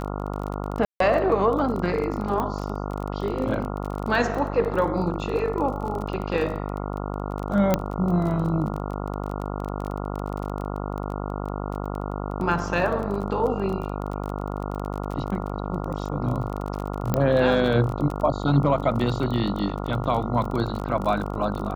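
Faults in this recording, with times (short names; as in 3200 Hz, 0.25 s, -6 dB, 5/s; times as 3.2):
buzz 50 Hz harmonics 28 -30 dBFS
crackle 24/s -29 dBFS
0.85–1 gap 0.153 s
2.4 pop -15 dBFS
7.74 pop -6 dBFS
17.14 pop -9 dBFS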